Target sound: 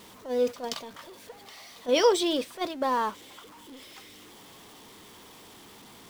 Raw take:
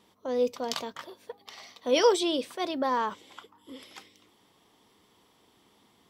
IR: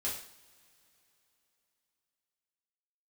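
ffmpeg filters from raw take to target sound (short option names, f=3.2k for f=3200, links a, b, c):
-af "aeval=exprs='val(0)+0.5*0.0141*sgn(val(0))':c=same,agate=range=-8dB:threshold=-29dB:ratio=16:detection=peak"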